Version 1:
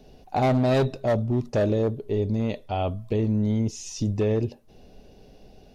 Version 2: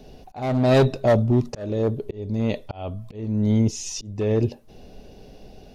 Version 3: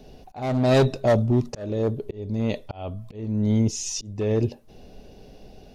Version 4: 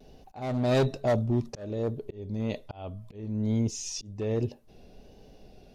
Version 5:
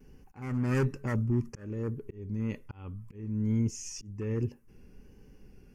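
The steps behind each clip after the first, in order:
volume swells 448 ms; level +5.5 dB
dynamic equaliser 7,000 Hz, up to +4 dB, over −44 dBFS, Q 0.86; level −1.5 dB
pitch vibrato 1.2 Hz 46 cents; level −6 dB
phaser with its sweep stopped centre 1,600 Hz, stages 4

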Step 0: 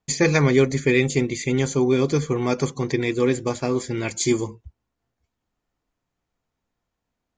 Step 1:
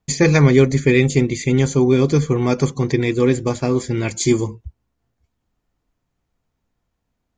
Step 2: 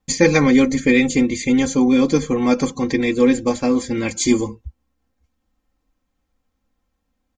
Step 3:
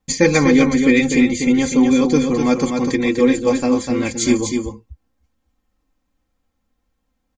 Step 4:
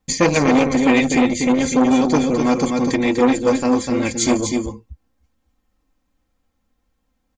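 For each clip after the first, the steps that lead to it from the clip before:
low-shelf EQ 220 Hz +7.5 dB; level +2 dB
comb filter 3.8 ms, depth 84%; level −1 dB
single-tap delay 248 ms −5.5 dB
saturating transformer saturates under 800 Hz; level +1.5 dB

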